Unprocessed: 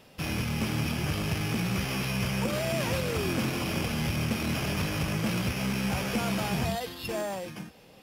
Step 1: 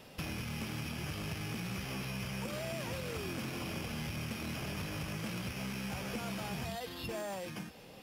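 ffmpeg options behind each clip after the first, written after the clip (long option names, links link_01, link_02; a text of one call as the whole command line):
ffmpeg -i in.wav -filter_complex "[0:a]acrossover=split=1100|3600[link_01][link_02][link_03];[link_01]acompressor=threshold=-41dB:ratio=4[link_04];[link_02]acompressor=threshold=-49dB:ratio=4[link_05];[link_03]acompressor=threshold=-51dB:ratio=4[link_06];[link_04][link_05][link_06]amix=inputs=3:normalize=0,volume=1dB" out.wav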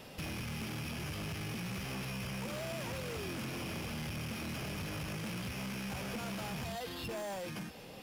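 ffmpeg -i in.wav -af "asoftclip=type=tanh:threshold=-39.5dB,volume=3.5dB" out.wav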